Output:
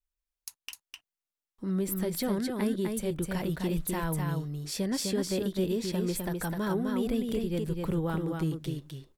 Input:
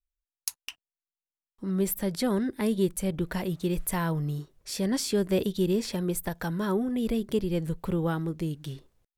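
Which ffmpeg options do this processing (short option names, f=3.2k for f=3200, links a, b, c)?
-af "alimiter=limit=-20.5dB:level=0:latency=1:release=323,aecho=1:1:255:0.631,volume=-1dB"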